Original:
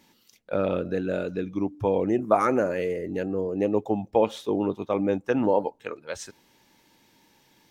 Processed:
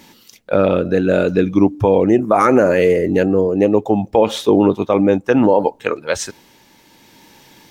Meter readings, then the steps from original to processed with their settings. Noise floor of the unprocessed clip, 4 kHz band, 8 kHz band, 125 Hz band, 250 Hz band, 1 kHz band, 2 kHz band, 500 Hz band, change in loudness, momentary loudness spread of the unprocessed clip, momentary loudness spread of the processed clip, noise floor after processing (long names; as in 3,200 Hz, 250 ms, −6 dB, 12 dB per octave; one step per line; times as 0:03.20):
−63 dBFS, +14.0 dB, can't be measured, +12.5 dB, +12.0 dB, +9.5 dB, +12.0 dB, +11.0 dB, +11.0 dB, 11 LU, 8 LU, −51 dBFS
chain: amplitude tremolo 0.67 Hz, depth 38%
boost into a limiter +16 dB
level −1 dB